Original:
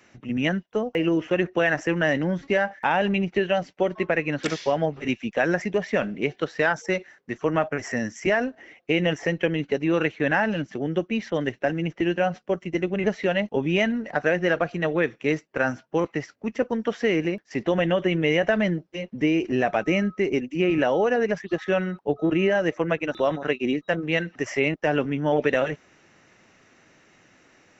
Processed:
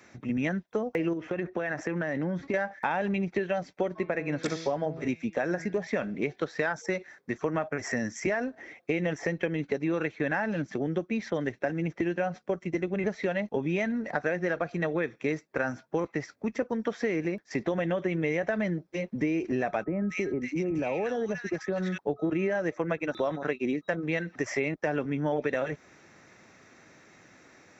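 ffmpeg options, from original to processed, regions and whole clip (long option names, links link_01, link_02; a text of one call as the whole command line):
ffmpeg -i in.wav -filter_complex "[0:a]asettb=1/sr,asplit=3[link_01][link_02][link_03];[link_01]atrim=end=1.134[link_04];[link_02]atrim=start=1.13:end=2.54,asetpts=PTS-STARTPTS,afade=type=in:duration=0.004:curve=qsin,afade=type=out:start_time=1.406:duration=0.004:curve=qsin,highpass=48,highshelf=frequency=4600:gain=-9,acompressor=threshold=-26dB:ratio=4:attack=3.2:release=140:knee=1:detection=peak[link_05];[link_03]atrim=start=2.536[link_06];[link_04][link_05]acrossfade=duration=0.004:curve1=hsin:curve2=qsin[link_07];[link_07][link_06]acrossfade=duration=0.004:curve1=qsin:curve2=hsin,asettb=1/sr,asplit=3[link_08][link_09][link_10];[link_08]atrim=end=3.884[link_11];[link_09]atrim=start=3.88:end=5.87,asetpts=PTS-STARTPTS,afade=type=in:duration=0.004:curve=qsin,afade=type=out:start_time=1.986:duration=0.004:curve=qsin,equalizer=frequency=2500:width=0.62:gain=-3.5,bandreject=frequency=163.1:width_type=h:width=4,bandreject=frequency=326.2:width_type=h:width=4,bandreject=frequency=489.3:width_type=h:width=4,bandreject=frequency=652.4:width_type=h:width=4,bandreject=frequency=815.5:width_type=h:width=4,bandreject=frequency=978.6:width_type=h:width=4,bandreject=frequency=1141.7:width_type=h:width=4,bandreject=frequency=1304.8:width_type=h:width=4,bandreject=frequency=1467.9:width_type=h:width=4,bandreject=frequency=1631:width_type=h:width=4,bandreject=frequency=1794.1:width_type=h:width=4,bandreject=frequency=1957.2:width_type=h:width=4,bandreject=frequency=2120.3:width_type=h:width=4,bandreject=frequency=2283.4:width_type=h:width=4,bandreject=frequency=2446.5:width_type=h:width=4,bandreject=frequency=2609.6:width_type=h:width=4,bandreject=frequency=2772.7:width_type=h:width=4,bandreject=frequency=2935.8:width_type=h:width=4,bandreject=frequency=3098.9:width_type=h:width=4,bandreject=frequency=3262:width_type=h:width=4,bandreject=frequency=3425.1:width_type=h:width=4,bandreject=frequency=3588.2:width_type=h:width=4,bandreject=frequency=3751.3:width_type=h:width=4,bandreject=frequency=3914.4:width_type=h:width=4,bandreject=frequency=4077.5:width_type=h:width=4,bandreject=frequency=4240.6:width_type=h:width=4,bandreject=frequency=4403.7:width_type=h:width=4,bandreject=frequency=4566.8:width_type=h:width=4,bandreject=frequency=4729.9:width_type=h:width=4,bandreject=frequency=4893:width_type=h:width=4,bandreject=frequency=5056.1:width_type=h:width=4[link_12];[link_10]atrim=start=5.866[link_13];[link_11][link_12]acrossfade=duration=0.004:curve1=hsin:curve2=qsin[link_14];[link_14][link_13]acrossfade=duration=0.004:curve1=qsin:curve2=hsin,asettb=1/sr,asplit=3[link_15][link_16][link_17];[link_15]atrim=end=19.844[link_18];[link_16]atrim=start=19.84:end=21.98,asetpts=PTS-STARTPTS,afade=type=in:duration=0.004:curve=qsin,afade=type=out:start_time=2.136:duration=0.004:curve=qsin,acrossover=split=160|3000[link_19][link_20][link_21];[link_20]acompressor=threshold=-28dB:ratio=2:attack=3.2:release=140:knee=2.83:detection=peak[link_22];[link_19][link_22][link_21]amix=inputs=3:normalize=0,acrossover=split=1400[link_23][link_24];[link_24]adelay=240[link_25];[link_23][link_25]amix=inputs=2:normalize=0,atrim=end_sample=94374[link_26];[link_17]atrim=start=21.976[link_27];[link_18][link_26]acrossfade=duration=0.004:curve1=hsin:curve2=qsin[link_28];[link_28][link_27]acrossfade=duration=0.004:curve1=qsin:curve2=hsin,highpass=42,bandreject=frequency=2900:width=5.5,acompressor=threshold=-29dB:ratio=3,volume=1.5dB" out.wav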